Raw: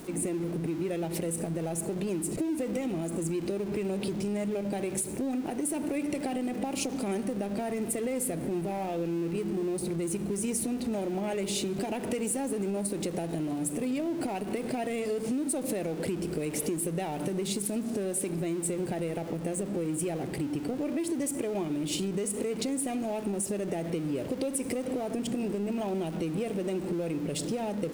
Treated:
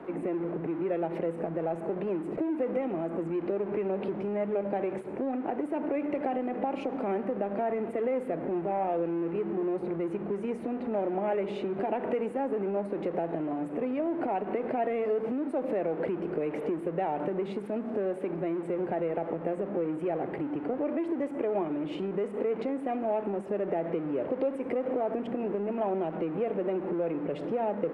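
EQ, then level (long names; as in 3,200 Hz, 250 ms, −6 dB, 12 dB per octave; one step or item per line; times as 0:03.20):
three-way crossover with the lows and the highs turned down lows −13 dB, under 160 Hz, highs −22 dB, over 2,200 Hz
three-way crossover with the lows and the highs turned down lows −13 dB, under 450 Hz, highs −13 dB, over 4,100 Hz
spectral tilt −2 dB per octave
+5.5 dB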